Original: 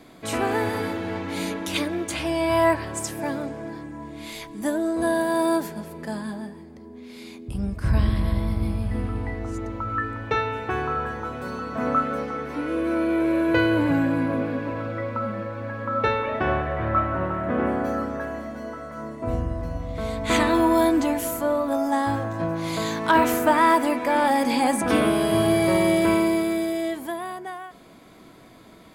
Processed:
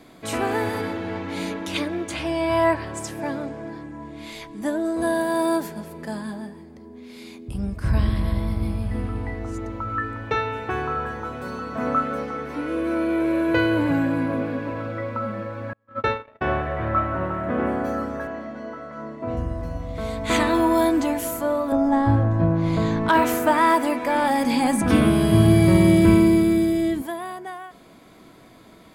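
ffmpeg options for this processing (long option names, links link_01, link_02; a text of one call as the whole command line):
ffmpeg -i in.wav -filter_complex "[0:a]asettb=1/sr,asplit=3[link_01][link_02][link_03];[link_01]atrim=end=0.814[link_04];[link_02]atrim=start=0.81:end=4.85,asetpts=PTS-STARTPTS,afade=type=in:duration=0.004:curve=qsin,afade=type=out:start_time=4.036:duration=0.004:curve=qsin,highshelf=frequency=8600:gain=-10[link_05];[link_03]atrim=start=4.846[link_06];[link_04][link_05]acrossfade=duration=0.004:curve1=hsin:curve2=qsin[link_07];[link_07][link_06]acrossfade=duration=0.004:curve1=qsin:curve2=hsin,asettb=1/sr,asplit=3[link_08][link_09][link_10];[link_08]atrim=end=15.734[link_11];[link_09]atrim=start=15.73:end=16.42,asetpts=PTS-STARTPTS,afade=type=in:duration=0.004:curve=qsin,afade=type=out:start_time=0.686:duration=0.004:curve=qsin,agate=range=-39dB:threshold=-24dB:ratio=16:release=100:detection=peak[link_12];[link_10]atrim=start=16.416[link_13];[link_11][link_12]acrossfade=duration=0.004:curve1=hsin:curve2=qsin[link_14];[link_14][link_13]acrossfade=duration=0.004:curve1=qsin:curve2=hsin,asettb=1/sr,asplit=3[link_15][link_16][link_17];[link_15]atrim=end=18.274[link_18];[link_16]atrim=start=18.27:end=19.37,asetpts=PTS-STARTPTS,afade=type=in:duration=0.004:curve=qsin,afade=type=out:start_time=1.096:duration=0.004:curve=qsin,highpass=110,lowpass=4300[link_19];[link_17]atrim=start=19.366[link_20];[link_18][link_19]acrossfade=duration=0.004:curve1=hsin:curve2=qsin[link_21];[link_21][link_20]acrossfade=duration=0.004:curve1=qsin:curve2=hsin,asettb=1/sr,asplit=3[link_22][link_23][link_24];[link_22]atrim=end=21.724[link_25];[link_23]atrim=start=21.72:end=23.09,asetpts=PTS-STARTPTS,afade=type=in:duration=0.004:curve=qsin,afade=type=out:start_time=1.366:duration=0.004:curve=qsin,aemphasis=mode=reproduction:type=riaa[link_26];[link_24]atrim=start=23.086[link_27];[link_25][link_26]acrossfade=duration=0.004:curve1=hsin:curve2=qsin[link_28];[link_28][link_27]acrossfade=duration=0.004:curve1=qsin:curve2=hsin,asettb=1/sr,asplit=3[link_29][link_30][link_31];[link_29]atrim=end=23.974[link_32];[link_30]atrim=start=23.97:end=27.02,asetpts=PTS-STARTPTS,afade=type=in:duration=0.004:curve=qsin,afade=type=out:start_time=3.046:duration=0.004:curve=qsin,asubboost=boost=11:cutoff=230[link_33];[link_31]atrim=start=27.016[link_34];[link_32][link_33]acrossfade=duration=0.004:curve1=hsin:curve2=qsin[link_35];[link_35][link_34]acrossfade=duration=0.004:curve1=qsin:curve2=hsin" out.wav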